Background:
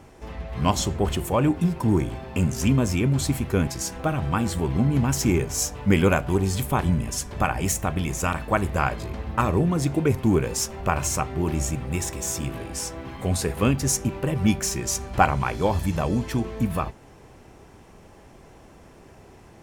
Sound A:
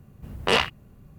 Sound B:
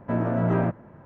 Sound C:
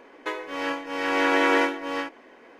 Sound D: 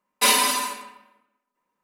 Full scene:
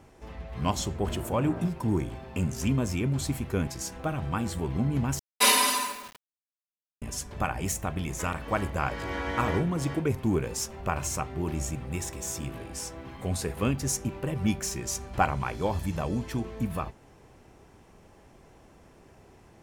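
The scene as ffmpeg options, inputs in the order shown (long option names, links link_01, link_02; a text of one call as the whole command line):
ffmpeg -i bed.wav -i cue0.wav -i cue1.wav -i cue2.wav -i cue3.wav -filter_complex "[0:a]volume=-6dB[link_01];[4:a]acrusher=bits=6:mix=0:aa=0.000001[link_02];[3:a]bandreject=frequency=2600:width=12[link_03];[link_01]asplit=2[link_04][link_05];[link_04]atrim=end=5.194[link_06];[link_02]atrim=end=1.83,asetpts=PTS-STARTPTS,volume=-2.5dB[link_07];[link_05]atrim=start=7.016[link_08];[2:a]atrim=end=1.05,asetpts=PTS-STARTPTS,volume=-14dB,afade=type=in:duration=0.004:curve=hsin,afade=type=out:start_time=1.046:duration=0.004:curve=hsin,adelay=980[link_09];[link_03]atrim=end=2.59,asetpts=PTS-STARTPTS,volume=-12dB,afade=type=in:duration=0.004:curve=hsin,afade=type=out:start_time=2.586:duration=0.004:curve=hsin,adelay=7930[link_10];[link_06][link_07]acrossfade=duration=0.004:curve1=hsin:curve2=hsin[link_11];[link_11][link_08]acrossfade=duration=0.004:curve1=hsin:curve2=hsin[link_12];[link_12][link_09][link_10]amix=inputs=3:normalize=0" out.wav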